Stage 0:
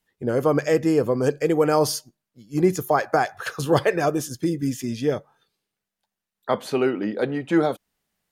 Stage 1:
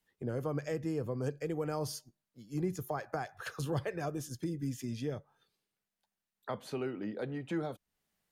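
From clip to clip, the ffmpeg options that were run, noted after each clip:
-filter_complex "[0:a]acrossover=split=140[s0][s1];[s1]acompressor=threshold=0.0112:ratio=2[s2];[s0][s2]amix=inputs=2:normalize=0,volume=0.562"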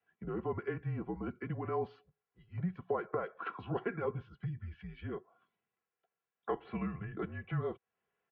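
-filter_complex "[0:a]acrossover=split=320 2600:gain=0.141 1 0.141[s0][s1][s2];[s0][s1][s2]amix=inputs=3:normalize=0,aecho=1:1:3.2:0.71,highpass=f=300:t=q:w=0.5412,highpass=f=300:t=q:w=1.307,lowpass=f=3500:t=q:w=0.5176,lowpass=f=3500:t=q:w=0.7071,lowpass=f=3500:t=q:w=1.932,afreqshift=-190,volume=1.26"

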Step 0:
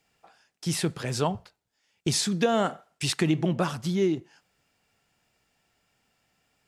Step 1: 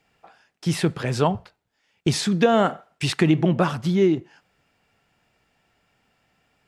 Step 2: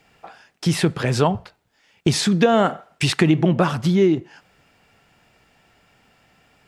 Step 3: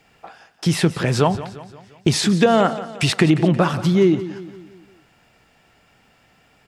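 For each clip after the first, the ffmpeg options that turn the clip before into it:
-af "bass=f=250:g=0,treble=f=4000:g=-9,volume=2"
-af "acompressor=threshold=0.02:ratio=1.5,volume=2.82"
-af "aecho=1:1:175|350|525|700|875:0.178|0.0889|0.0445|0.0222|0.0111,volume=1.12"

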